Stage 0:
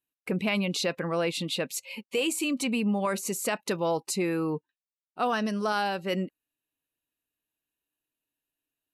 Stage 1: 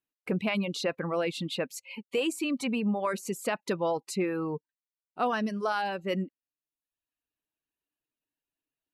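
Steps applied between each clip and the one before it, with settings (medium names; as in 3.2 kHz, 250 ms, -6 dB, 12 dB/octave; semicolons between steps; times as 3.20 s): reverb removal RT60 0.83 s; treble shelf 3.9 kHz -9 dB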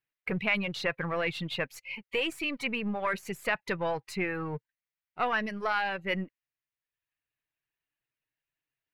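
partial rectifier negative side -3 dB; graphic EQ 125/250/2000/8000 Hz +10/-8/+11/-8 dB; trim -1 dB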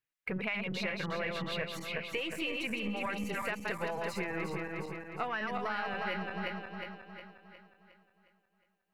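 backward echo that repeats 180 ms, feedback 69%, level -3.5 dB; compression, threshold -29 dBFS, peak gain reduction 7 dB; trim -2.5 dB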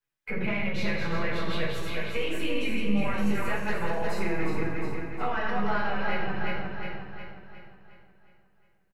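frequency-shifting echo 85 ms, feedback 54%, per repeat -43 Hz, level -9.5 dB; reverberation RT60 0.45 s, pre-delay 7 ms, DRR -8 dB; trim -6.5 dB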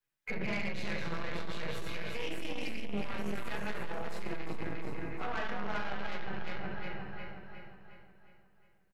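saturation -27.5 dBFS, distortion -10 dB; trim -1 dB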